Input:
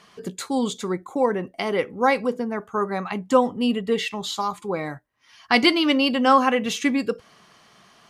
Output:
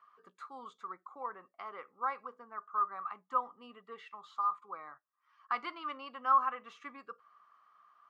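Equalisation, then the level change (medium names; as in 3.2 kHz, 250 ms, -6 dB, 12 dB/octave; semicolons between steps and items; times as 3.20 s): band-pass filter 1.2 kHz, Q 11; 0.0 dB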